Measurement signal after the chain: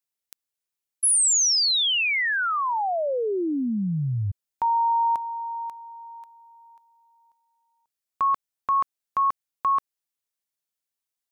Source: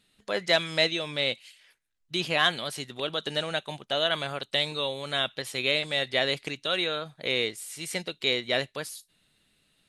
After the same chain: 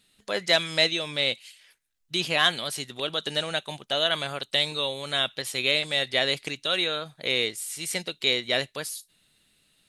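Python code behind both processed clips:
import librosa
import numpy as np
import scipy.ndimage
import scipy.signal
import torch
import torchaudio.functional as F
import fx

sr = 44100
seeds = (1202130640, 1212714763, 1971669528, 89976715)

y = fx.high_shelf(x, sr, hz=3700.0, db=6.5)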